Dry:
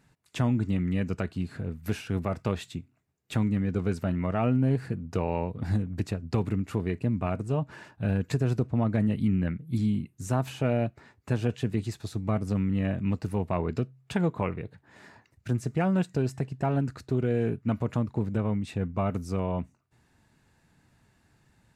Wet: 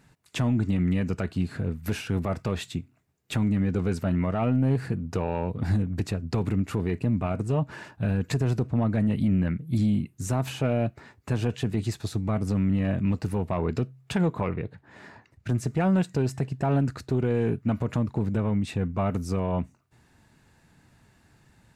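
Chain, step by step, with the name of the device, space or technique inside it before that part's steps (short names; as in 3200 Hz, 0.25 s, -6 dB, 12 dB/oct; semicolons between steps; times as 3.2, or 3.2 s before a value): soft clipper into limiter (soft clip -16 dBFS, distortion -22 dB; limiter -21.5 dBFS, peak gain reduction 4 dB); 14.41–15.5 high shelf 5500 Hz -9 dB; gain +5 dB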